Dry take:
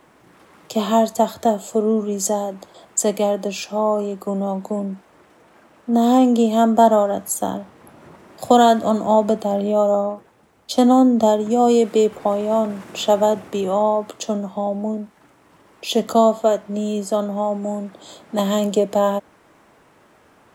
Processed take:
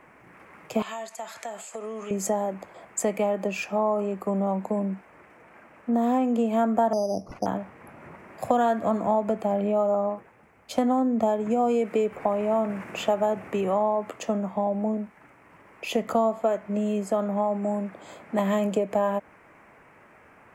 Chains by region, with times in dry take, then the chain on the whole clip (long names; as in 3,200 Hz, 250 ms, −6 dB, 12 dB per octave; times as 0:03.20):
0:00.82–0:02.11: meter weighting curve ITU-R 468 + downward compressor 12 to 1, threshold −29 dBFS
0:06.93–0:07.46: inverse Chebyshev band-stop filter 2,500–5,400 Hz, stop band 80 dB + bad sample-rate conversion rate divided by 8×, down none, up zero stuff + head-to-tape spacing loss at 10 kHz 28 dB
whole clip: high shelf with overshoot 2,900 Hz −7.5 dB, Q 3; downward compressor 3 to 1, threshold −20 dBFS; parametric band 320 Hz −3 dB 0.77 octaves; level −1 dB